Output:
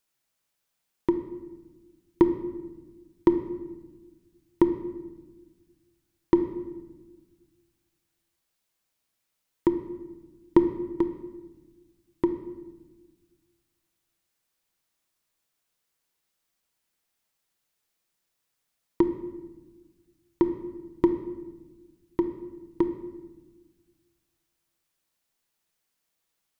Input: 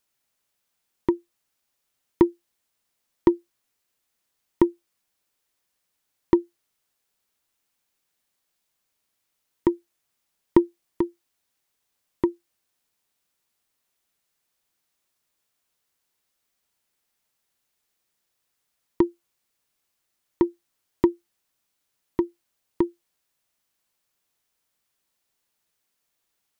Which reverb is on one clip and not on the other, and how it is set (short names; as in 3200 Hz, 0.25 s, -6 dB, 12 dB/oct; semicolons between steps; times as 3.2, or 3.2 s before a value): shoebox room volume 900 m³, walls mixed, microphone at 0.65 m; gain -2.5 dB